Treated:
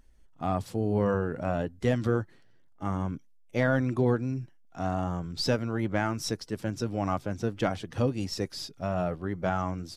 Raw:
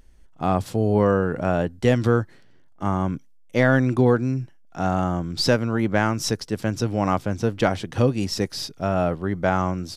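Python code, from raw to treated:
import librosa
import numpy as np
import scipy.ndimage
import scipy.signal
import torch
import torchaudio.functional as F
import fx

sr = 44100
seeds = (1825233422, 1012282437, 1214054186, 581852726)

y = fx.spec_quant(x, sr, step_db=15)
y = y * 10.0 ** (-7.0 / 20.0)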